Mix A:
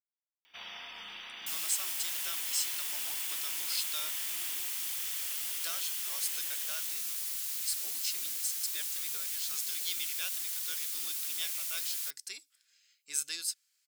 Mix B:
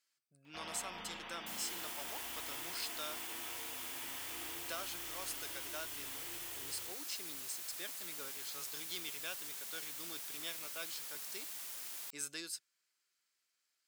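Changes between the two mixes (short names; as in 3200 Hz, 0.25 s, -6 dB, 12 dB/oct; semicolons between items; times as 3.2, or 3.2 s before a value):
speech: entry -0.95 s; master: add tilt shelf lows +10 dB, about 1400 Hz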